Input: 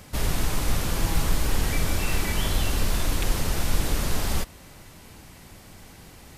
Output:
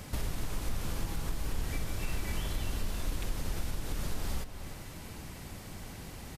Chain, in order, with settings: compression 4:1, threshold -35 dBFS, peak gain reduction 16.5 dB; bass shelf 330 Hz +3 dB; echo from a far wall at 51 m, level -9 dB

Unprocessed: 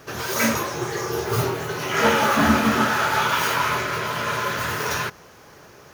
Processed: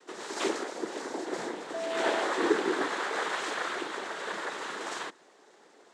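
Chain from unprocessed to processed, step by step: noise-vocoded speech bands 6; 1.73–2.21 s: whistle 660 Hz -22 dBFS; ladder high-pass 290 Hz, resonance 45%; trim -2.5 dB

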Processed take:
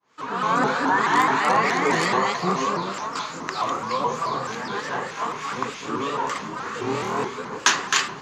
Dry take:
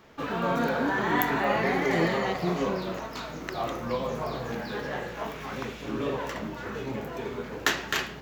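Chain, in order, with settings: fade-in on the opening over 0.52 s; in parallel at -11 dB: integer overflow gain 16 dB; 6.79–7.25 s: on the sum: flutter echo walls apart 4.3 m, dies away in 1.1 s; harmonic tremolo 3.2 Hz, depth 50%, crossover 1.6 kHz; cabinet simulation 180–9800 Hz, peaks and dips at 220 Hz -4 dB, 340 Hz -5 dB, 600 Hz -8 dB, 1.1 kHz +10 dB, 4.6 kHz +4 dB, 6.9 kHz +9 dB; vibrato with a chosen wave saw up 4.7 Hz, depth 160 cents; trim +5.5 dB

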